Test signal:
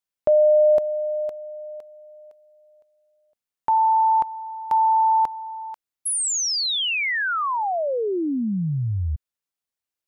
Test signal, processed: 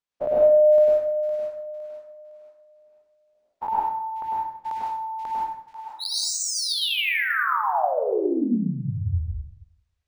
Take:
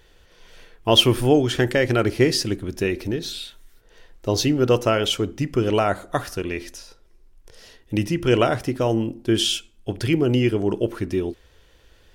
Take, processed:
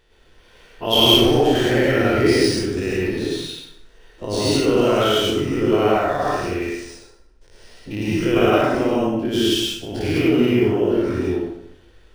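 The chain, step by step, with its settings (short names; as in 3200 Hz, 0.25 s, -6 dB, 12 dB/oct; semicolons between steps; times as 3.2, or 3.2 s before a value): spectral dilation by 0.12 s; notches 60/120/180 Hz; plate-style reverb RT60 0.79 s, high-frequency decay 0.7×, pre-delay 90 ms, DRR -5.5 dB; decimation joined by straight lines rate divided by 3×; gain -9 dB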